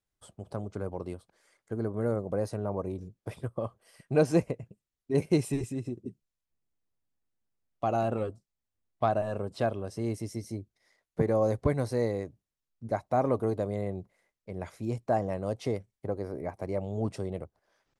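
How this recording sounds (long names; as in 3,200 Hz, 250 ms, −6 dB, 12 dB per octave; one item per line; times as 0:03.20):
background noise floor −88 dBFS
spectral slope −6.5 dB per octave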